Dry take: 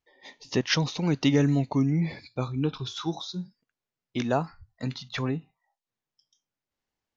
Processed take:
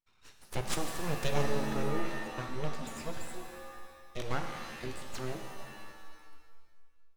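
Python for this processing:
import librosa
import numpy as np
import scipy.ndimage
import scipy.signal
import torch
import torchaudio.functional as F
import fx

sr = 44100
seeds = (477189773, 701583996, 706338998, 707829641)

y = np.abs(x)
y = fx.rev_shimmer(y, sr, seeds[0], rt60_s=1.6, semitones=7, shimmer_db=-2, drr_db=5.0)
y = y * 10.0 ** (-7.0 / 20.0)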